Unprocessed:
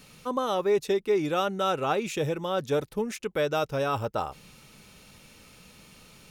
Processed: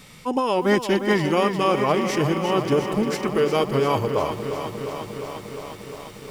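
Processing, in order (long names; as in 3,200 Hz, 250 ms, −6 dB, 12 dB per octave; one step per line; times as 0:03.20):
formants moved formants −3 semitones
feedback echo at a low word length 353 ms, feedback 80%, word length 9 bits, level −9 dB
level +6 dB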